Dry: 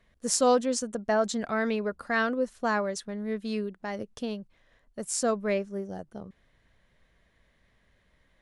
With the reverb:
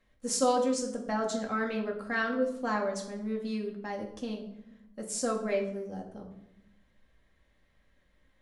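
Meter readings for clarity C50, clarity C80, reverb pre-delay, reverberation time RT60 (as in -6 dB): 8.0 dB, 11.0 dB, 4 ms, 0.85 s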